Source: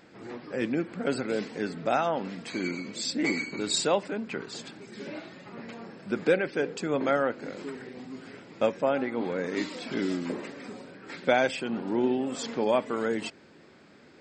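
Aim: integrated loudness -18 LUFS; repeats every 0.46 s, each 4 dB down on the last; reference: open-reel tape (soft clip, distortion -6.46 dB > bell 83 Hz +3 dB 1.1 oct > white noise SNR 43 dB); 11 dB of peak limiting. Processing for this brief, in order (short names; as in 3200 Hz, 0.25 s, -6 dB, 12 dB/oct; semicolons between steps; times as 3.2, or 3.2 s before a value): limiter -20.5 dBFS; feedback echo 0.46 s, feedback 63%, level -4 dB; soft clip -35 dBFS; bell 83 Hz +3 dB 1.1 oct; white noise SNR 43 dB; gain +20 dB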